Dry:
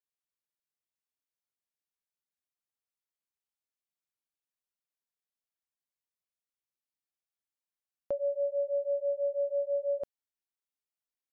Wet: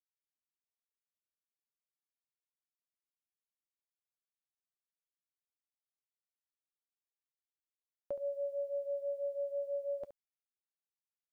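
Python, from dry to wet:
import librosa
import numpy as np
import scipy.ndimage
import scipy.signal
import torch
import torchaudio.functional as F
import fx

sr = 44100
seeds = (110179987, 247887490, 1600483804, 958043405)

y = fx.room_early_taps(x, sr, ms=(10, 71), db=(-13.5, -12.5))
y = fx.quant_dither(y, sr, seeds[0], bits=12, dither='none')
y = y * 10.0 ** (-6.0 / 20.0)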